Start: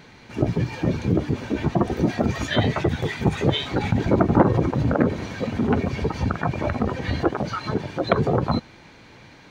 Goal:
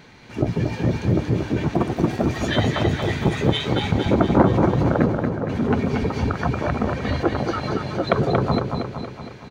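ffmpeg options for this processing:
ffmpeg -i in.wav -filter_complex "[0:a]asettb=1/sr,asplit=3[link_01][link_02][link_03];[link_01]atrim=end=1.744[link_04];[link_02]atrim=start=1.74:end=2.36,asetpts=PTS-STARTPTS,afade=type=in:duration=0.004:curve=qsin,afade=type=out:start_time=0.616:duration=0.004:curve=qsin,aeval=exprs='sgn(val(0))*max(abs(val(0))-0.0133,0)':channel_layout=same[link_05];[link_03]atrim=start=2.356[link_06];[link_04][link_05]acrossfade=duration=0.004:curve1=hsin:curve2=qsin[link_07];[link_07][link_06]acrossfade=duration=0.004:curve1=qsin:curve2=hsin,asplit=3[link_08][link_09][link_10];[link_08]afade=type=out:start_time=5.05:duration=0.02[link_11];[link_09]lowpass=frequency=1300:width=0.5412,lowpass=frequency=1300:width=1.3066,afade=type=in:start_time=5.05:duration=0.02,afade=type=out:start_time=5.48:duration=0.02[link_12];[link_10]afade=type=in:start_time=5.48:duration=0.02[link_13];[link_11][link_12][link_13]amix=inputs=3:normalize=0,aecho=1:1:232|464|696|928|1160|1392|1624:0.562|0.309|0.17|0.0936|0.0515|0.0283|0.0156" out.wav

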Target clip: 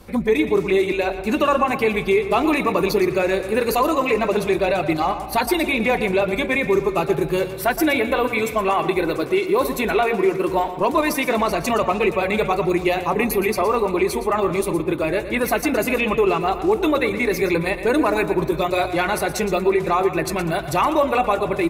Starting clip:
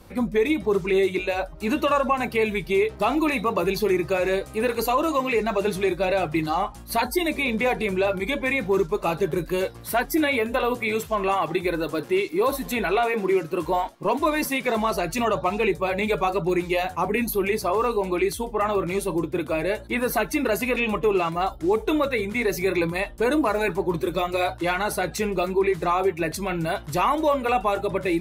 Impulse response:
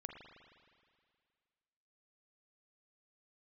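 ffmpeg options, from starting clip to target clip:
-filter_complex "[0:a]atempo=1.3,asplit=2[link_01][link_02];[1:a]atrim=start_sample=2205,adelay=117[link_03];[link_02][link_03]afir=irnorm=-1:irlink=0,volume=-6.5dB[link_04];[link_01][link_04]amix=inputs=2:normalize=0,volume=3.5dB"

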